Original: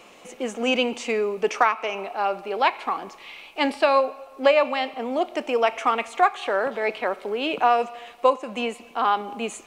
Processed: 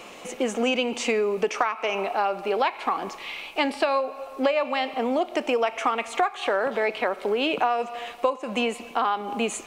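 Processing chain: compressor 5:1, threshold -27 dBFS, peak gain reduction 13 dB; gain +6 dB

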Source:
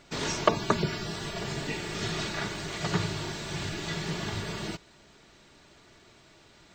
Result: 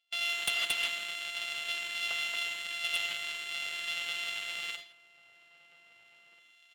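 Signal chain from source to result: sample sorter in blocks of 64 samples; band-pass 3100 Hz, Q 5.5; tilt +1.5 dB/oct; outdoor echo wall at 280 m, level -9 dB; non-linear reverb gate 0.18 s rising, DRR 6.5 dB; gate -53 dBFS, range -18 dB; sample leveller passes 1; reverse; upward compressor, threshold -53 dBFS; reverse; sine folder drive 13 dB, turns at -15 dBFS; gain -8 dB

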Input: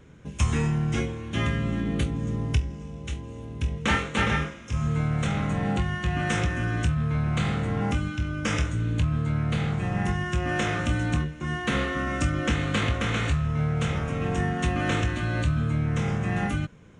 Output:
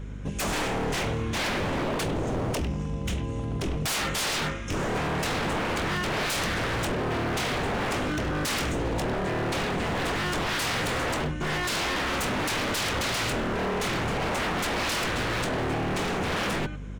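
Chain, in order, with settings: speakerphone echo 0.1 s, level -12 dB; hum 50 Hz, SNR 18 dB; wavefolder -29.5 dBFS; gain +6.5 dB

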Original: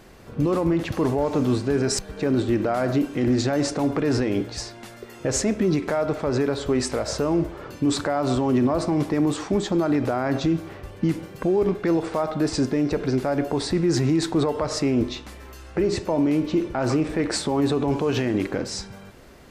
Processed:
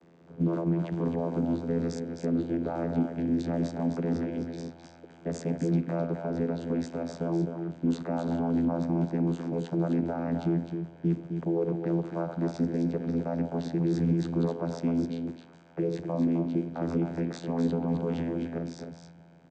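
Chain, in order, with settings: vocoder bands 16, saw 84.2 Hz; echo 0.26 s -6.5 dB; gain -5.5 dB

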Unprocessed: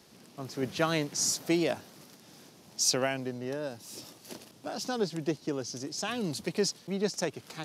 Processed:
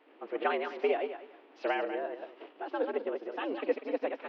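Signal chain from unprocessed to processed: regenerating reverse delay 0.174 s, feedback 41%, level -4 dB; mistuned SSB +87 Hz 210–2800 Hz; time stretch by phase-locked vocoder 0.56×

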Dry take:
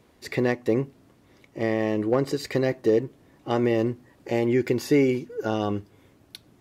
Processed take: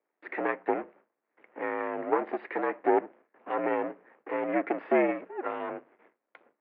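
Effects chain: gate with hold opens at -45 dBFS; half-wave rectifier; added harmonics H 8 -27 dB, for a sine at -11 dBFS; mistuned SSB -63 Hz 430–2300 Hz; gain +5.5 dB

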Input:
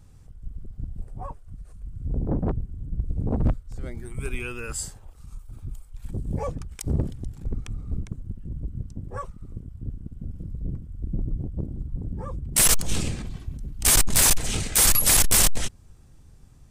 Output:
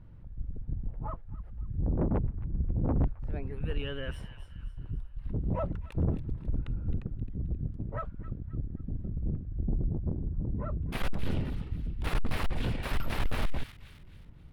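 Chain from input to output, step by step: varispeed +15%; soft clip -21 dBFS, distortion -10 dB; air absorption 420 m; thin delay 0.265 s, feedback 41%, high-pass 1800 Hz, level -10.5 dB

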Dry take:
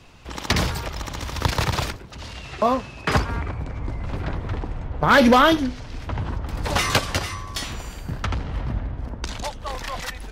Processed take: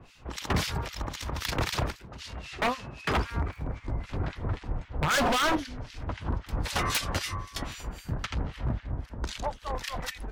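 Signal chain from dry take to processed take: 3.06–3.74 crackle 210/s -48 dBFS; harmonic tremolo 3.8 Hz, depth 100%, crossover 1600 Hz; wavefolder -19.5 dBFS

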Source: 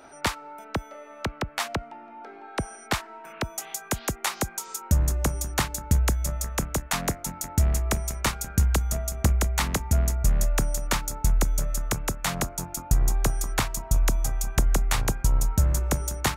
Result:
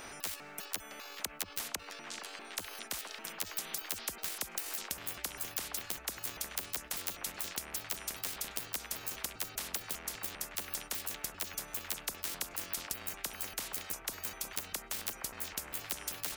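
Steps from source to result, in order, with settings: trilling pitch shifter +11.5 st, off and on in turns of 0.199 s; graphic EQ 125/2000/4000 Hz -11/-6/-6 dB; delay with a stepping band-pass 0.466 s, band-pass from 1100 Hz, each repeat 0.7 oct, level -10 dB; compressor 4:1, threshold -35 dBFS, peak gain reduction 14.5 dB; notch 1000 Hz, Q 7.2; spectral compressor 10:1; gain +3 dB

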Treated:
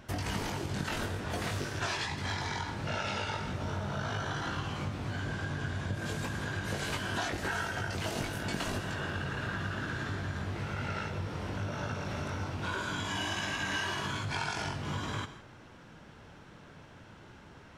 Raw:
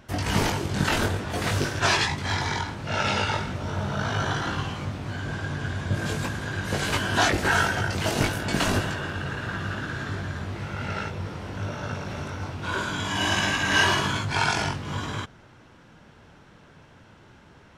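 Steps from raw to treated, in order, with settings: compressor, threshold -31 dBFS, peak gain reduction 14 dB; on a send: reverb, pre-delay 30 ms, DRR 11.5 dB; on the sum: gain -1 dB

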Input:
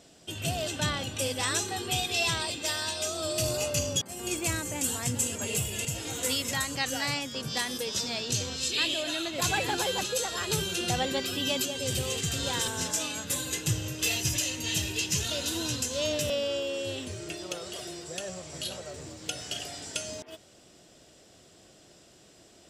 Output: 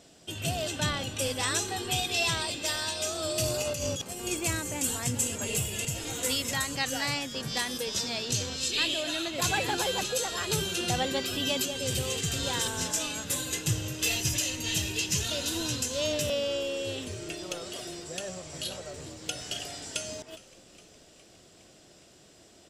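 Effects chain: 3.62–4.13 negative-ratio compressor -32 dBFS, ratio -1; frequency-shifting echo 0.412 s, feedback 65%, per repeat -95 Hz, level -21 dB

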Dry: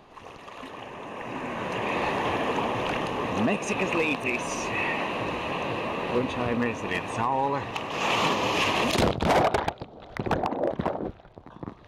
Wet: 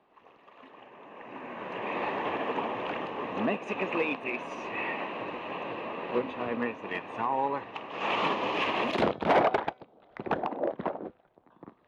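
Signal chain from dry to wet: three-band isolator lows -15 dB, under 180 Hz, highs -21 dB, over 3500 Hz; de-hum 252.4 Hz, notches 32; upward expander 1.5:1, over -45 dBFS

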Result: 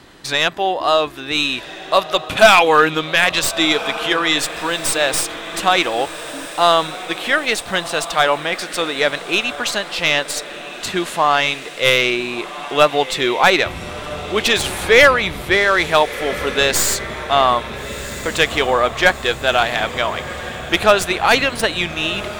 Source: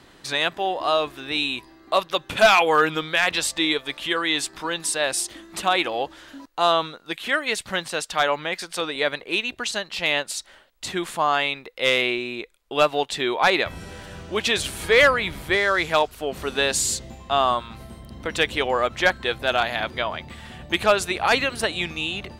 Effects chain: tracing distortion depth 0.034 ms; on a send: diffused feedback echo 1.378 s, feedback 54%, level -13.5 dB; on the sum: gain +6 dB

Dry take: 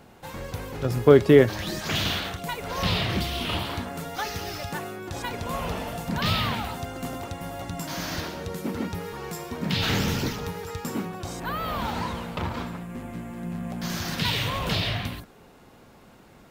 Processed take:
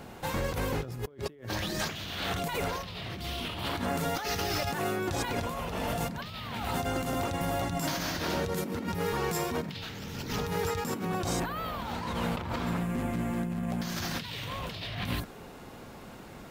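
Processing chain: negative-ratio compressor -35 dBFS, ratio -1

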